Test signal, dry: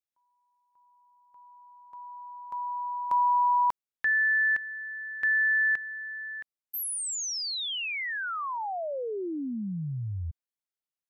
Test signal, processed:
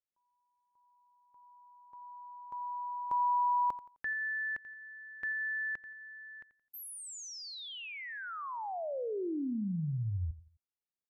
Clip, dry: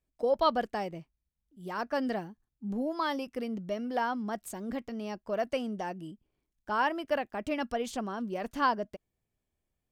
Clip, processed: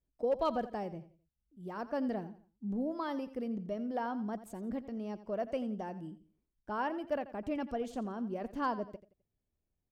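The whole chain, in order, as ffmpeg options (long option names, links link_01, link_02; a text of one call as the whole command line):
ffmpeg -i in.wav -filter_complex "[0:a]tiltshelf=frequency=970:gain=6,asoftclip=type=hard:threshold=-16.5dB,asplit=2[link_01][link_02];[link_02]aecho=0:1:86|172|258:0.178|0.0587|0.0194[link_03];[link_01][link_03]amix=inputs=2:normalize=0,volume=-7dB" out.wav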